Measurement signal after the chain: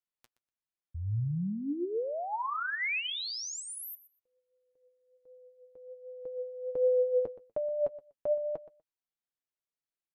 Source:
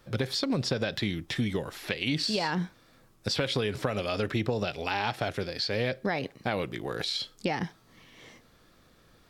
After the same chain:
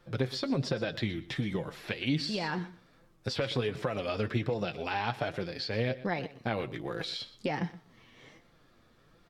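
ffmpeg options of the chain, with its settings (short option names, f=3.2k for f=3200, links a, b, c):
-af "highshelf=f=5.3k:g=-9.5,flanger=delay=5.7:depth=3.2:regen=39:speed=1.3:shape=sinusoidal,aecho=1:1:122|244:0.141|0.0226,volume=1.5dB"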